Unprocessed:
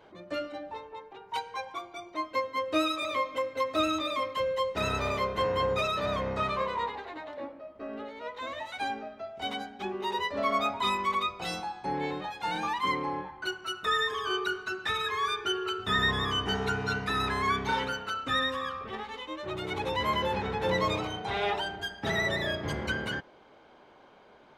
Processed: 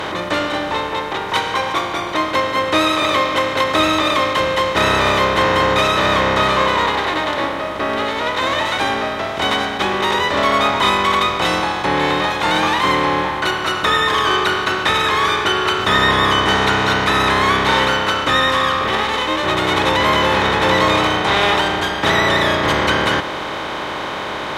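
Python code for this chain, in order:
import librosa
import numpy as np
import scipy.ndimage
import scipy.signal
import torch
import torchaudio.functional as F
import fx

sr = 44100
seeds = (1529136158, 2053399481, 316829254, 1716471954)

y = fx.bin_compress(x, sr, power=0.4)
y = F.gain(torch.from_numpy(y), 7.5).numpy()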